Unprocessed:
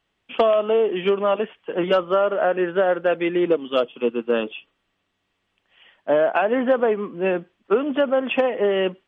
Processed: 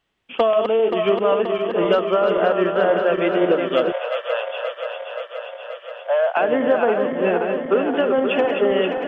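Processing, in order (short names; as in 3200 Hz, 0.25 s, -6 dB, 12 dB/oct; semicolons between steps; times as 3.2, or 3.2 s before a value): regenerating reverse delay 0.264 s, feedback 83%, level -6 dB; 3.92–6.37 steep high-pass 510 Hz 72 dB/oct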